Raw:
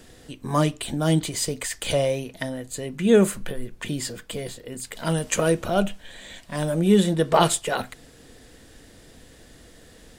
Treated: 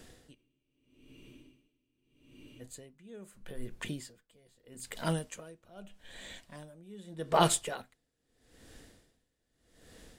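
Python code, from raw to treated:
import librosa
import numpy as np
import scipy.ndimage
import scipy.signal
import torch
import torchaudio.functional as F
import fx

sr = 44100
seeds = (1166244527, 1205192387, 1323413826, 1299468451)

y = fx.spec_freeze(x, sr, seeds[0], at_s=0.37, hold_s=2.24)
y = y * 10.0 ** (-28 * (0.5 - 0.5 * np.cos(2.0 * np.pi * 0.8 * np.arange(len(y)) / sr)) / 20.0)
y = F.gain(torch.from_numpy(y), -5.0).numpy()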